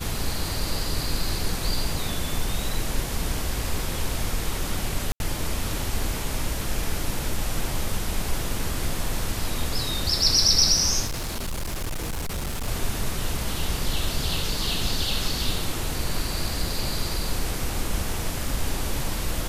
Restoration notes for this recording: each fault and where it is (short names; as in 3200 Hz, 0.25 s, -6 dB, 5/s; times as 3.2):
5.12–5.2 gap 81 ms
11.06–12.68 clipped -25.5 dBFS